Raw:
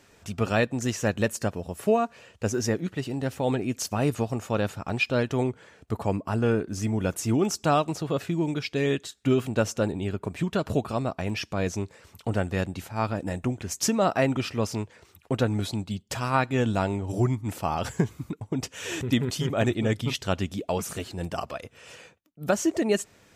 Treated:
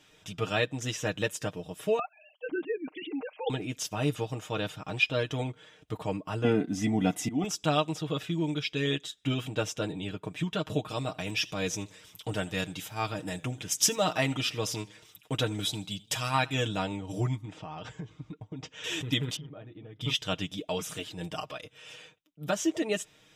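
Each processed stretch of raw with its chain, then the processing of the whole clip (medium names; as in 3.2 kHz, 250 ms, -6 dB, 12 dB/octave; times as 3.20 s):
1.99–3.50 s: formants replaced by sine waves + band-stop 1.8 kHz, Q 5.9
6.44–7.44 s: slow attack 249 ms + small resonant body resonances 240/720/2000 Hz, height 18 dB, ringing for 65 ms
10.90–16.68 s: treble shelf 4.8 kHz +10 dB + modulated delay 80 ms, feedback 44%, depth 112 cents, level -22 dB
17.45–18.84 s: low-pass 7.3 kHz 24 dB/octave + treble shelf 2.8 kHz -10 dB + compression 5:1, threshold -31 dBFS
19.36–20.01 s: tape spacing loss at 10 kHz 44 dB + compression 10:1, threshold -36 dBFS
whole clip: peaking EQ 3.5 kHz +11.5 dB 0.91 oct; band-stop 4.3 kHz, Q 6.2; comb 6.5 ms, depth 75%; trim -7.5 dB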